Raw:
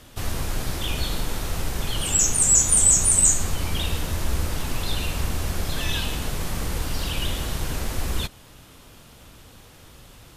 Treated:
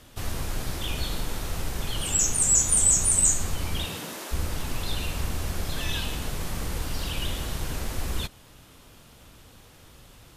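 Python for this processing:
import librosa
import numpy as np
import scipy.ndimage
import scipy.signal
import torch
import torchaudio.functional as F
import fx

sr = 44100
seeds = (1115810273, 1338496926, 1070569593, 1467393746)

y = fx.highpass(x, sr, hz=fx.line((3.84, 89.0), (4.31, 350.0)), slope=24, at=(3.84, 4.31), fade=0.02)
y = F.gain(torch.from_numpy(y), -3.5).numpy()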